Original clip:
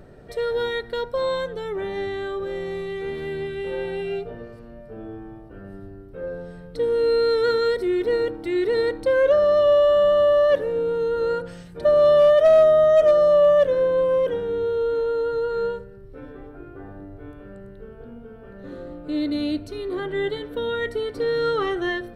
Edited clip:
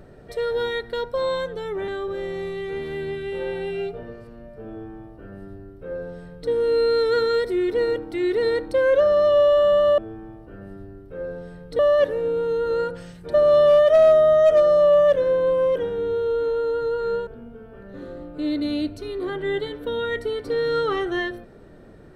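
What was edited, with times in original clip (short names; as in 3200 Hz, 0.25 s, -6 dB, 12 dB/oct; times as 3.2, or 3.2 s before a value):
1.88–2.2 cut
5.01–6.82 copy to 10.3
15.78–17.97 cut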